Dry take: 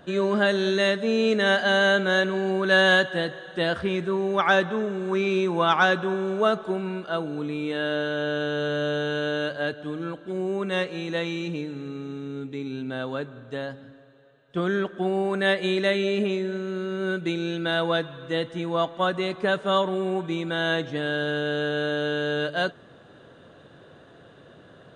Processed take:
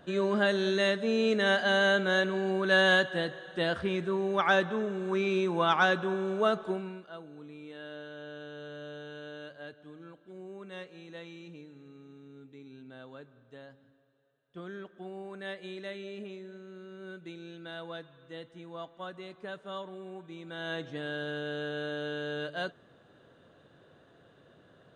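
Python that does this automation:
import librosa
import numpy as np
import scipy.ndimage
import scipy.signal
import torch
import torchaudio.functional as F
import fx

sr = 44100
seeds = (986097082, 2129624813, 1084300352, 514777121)

y = fx.gain(x, sr, db=fx.line((6.71, -5.0), (7.13, -17.5), (20.31, -17.5), (20.85, -9.5)))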